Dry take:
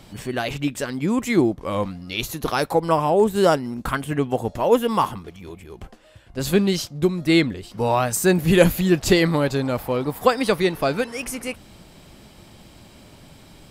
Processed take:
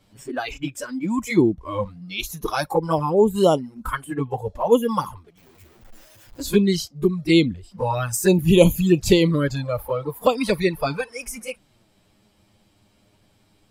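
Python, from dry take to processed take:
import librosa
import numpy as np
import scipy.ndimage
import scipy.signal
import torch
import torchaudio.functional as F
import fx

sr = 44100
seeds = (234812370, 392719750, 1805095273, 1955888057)

y = fx.clip_1bit(x, sr, at=(5.37, 6.39))
y = fx.env_flanger(y, sr, rest_ms=11.0, full_db=-13.0)
y = fx.noise_reduce_blind(y, sr, reduce_db=13)
y = y * librosa.db_to_amplitude(2.0)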